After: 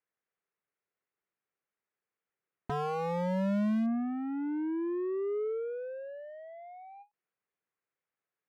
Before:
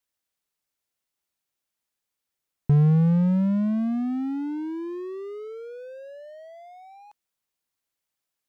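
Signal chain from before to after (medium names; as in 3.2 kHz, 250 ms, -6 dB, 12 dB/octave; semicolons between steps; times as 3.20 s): low-pass that closes with the level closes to 600 Hz, closed at -17 dBFS; cabinet simulation 140–2200 Hz, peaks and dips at 260 Hz -8 dB, 430 Hz +5 dB, 620 Hz -3 dB, 900 Hz -4 dB; wavefolder -25 dBFS; endings held to a fixed fall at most 360 dB/s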